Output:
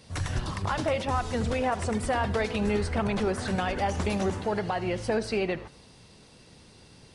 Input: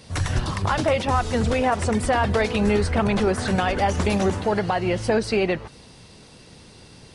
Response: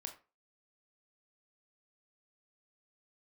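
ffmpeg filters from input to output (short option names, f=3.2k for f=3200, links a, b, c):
-filter_complex "[0:a]asplit=2[a][b];[1:a]atrim=start_sample=2205,adelay=76[c];[b][c]afir=irnorm=-1:irlink=0,volume=-12.5dB[d];[a][d]amix=inputs=2:normalize=0,volume=-6.5dB"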